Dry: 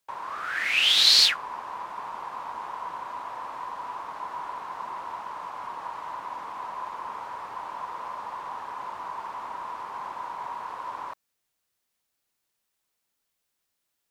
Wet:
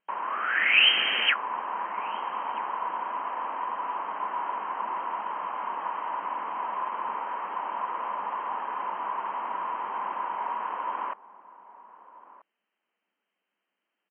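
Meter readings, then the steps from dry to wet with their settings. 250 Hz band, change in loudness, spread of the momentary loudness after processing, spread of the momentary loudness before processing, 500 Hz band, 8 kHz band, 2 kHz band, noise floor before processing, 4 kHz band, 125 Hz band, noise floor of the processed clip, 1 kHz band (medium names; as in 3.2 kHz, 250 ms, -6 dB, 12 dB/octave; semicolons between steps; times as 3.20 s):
+4.0 dB, -1.0 dB, 10 LU, 16 LU, +4.0 dB, under -40 dB, +4.0 dB, -80 dBFS, -4.5 dB, no reading, -84 dBFS, +4.0 dB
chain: wow and flutter 19 cents; echo from a far wall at 220 m, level -17 dB; FFT band-pass 180–3200 Hz; trim +4 dB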